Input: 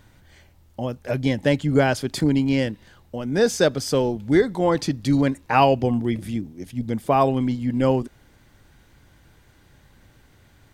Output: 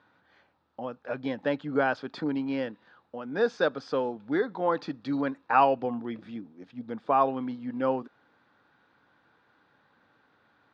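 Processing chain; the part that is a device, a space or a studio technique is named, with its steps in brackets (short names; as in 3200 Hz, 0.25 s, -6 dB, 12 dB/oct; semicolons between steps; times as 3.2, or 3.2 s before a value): phone earpiece (speaker cabinet 350–3400 Hz, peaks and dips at 370 Hz -7 dB, 620 Hz -5 dB, 1300 Hz +4 dB, 2100 Hz -10 dB, 3000 Hz -9 dB); gain -2.5 dB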